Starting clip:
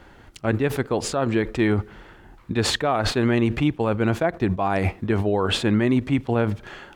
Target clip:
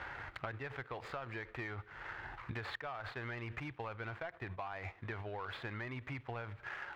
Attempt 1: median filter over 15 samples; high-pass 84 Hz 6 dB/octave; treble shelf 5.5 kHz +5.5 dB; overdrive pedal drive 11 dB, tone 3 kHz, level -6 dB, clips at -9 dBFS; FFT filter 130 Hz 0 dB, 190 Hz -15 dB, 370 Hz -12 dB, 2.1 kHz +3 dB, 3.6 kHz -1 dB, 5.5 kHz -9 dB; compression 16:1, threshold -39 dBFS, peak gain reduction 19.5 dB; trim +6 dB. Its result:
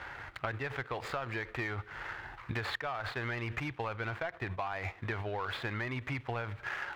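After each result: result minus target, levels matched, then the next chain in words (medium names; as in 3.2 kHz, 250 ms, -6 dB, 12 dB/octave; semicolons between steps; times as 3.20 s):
compression: peak gain reduction -6.5 dB; 8 kHz band +4.5 dB
median filter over 15 samples; high-pass 84 Hz 6 dB/octave; treble shelf 5.5 kHz +5.5 dB; overdrive pedal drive 11 dB, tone 3 kHz, level -6 dB, clips at -9 dBFS; FFT filter 130 Hz 0 dB, 190 Hz -15 dB, 370 Hz -12 dB, 2.1 kHz +3 dB, 3.6 kHz -1 dB, 5.5 kHz -9 dB; compression 16:1, threshold -46 dBFS, peak gain reduction 26 dB; trim +6 dB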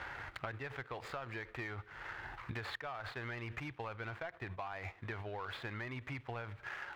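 8 kHz band +4.5 dB
median filter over 15 samples; high-pass 84 Hz 6 dB/octave; treble shelf 5.5 kHz -3 dB; overdrive pedal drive 11 dB, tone 3 kHz, level -6 dB, clips at -9 dBFS; FFT filter 130 Hz 0 dB, 190 Hz -15 dB, 370 Hz -12 dB, 2.1 kHz +3 dB, 3.6 kHz -1 dB, 5.5 kHz -9 dB; compression 16:1, threshold -46 dBFS, peak gain reduction 26 dB; trim +6 dB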